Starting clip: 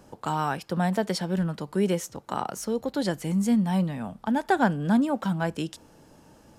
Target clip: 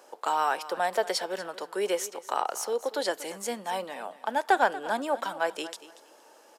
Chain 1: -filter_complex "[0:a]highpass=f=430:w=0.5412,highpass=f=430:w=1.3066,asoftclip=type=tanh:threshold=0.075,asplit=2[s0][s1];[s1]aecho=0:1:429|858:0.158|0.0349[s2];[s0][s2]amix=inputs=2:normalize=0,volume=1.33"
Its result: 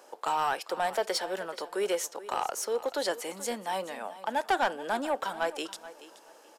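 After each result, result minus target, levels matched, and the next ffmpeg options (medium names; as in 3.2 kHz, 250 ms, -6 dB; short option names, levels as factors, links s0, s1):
echo 193 ms late; saturation: distortion +15 dB
-filter_complex "[0:a]highpass=f=430:w=0.5412,highpass=f=430:w=1.3066,asoftclip=type=tanh:threshold=0.075,asplit=2[s0][s1];[s1]aecho=0:1:236|472:0.158|0.0349[s2];[s0][s2]amix=inputs=2:normalize=0,volume=1.33"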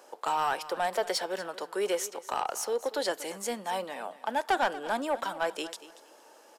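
saturation: distortion +15 dB
-filter_complex "[0:a]highpass=f=430:w=0.5412,highpass=f=430:w=1.3066,asoftclip=type=tanh:threshold=0.266,asplit=2[s0][s1];[s1]aecho=0:1:236|472:0.158|0.0349[s2];[s0][s2]amix=inputs=2:normalize=0,volume=1.33"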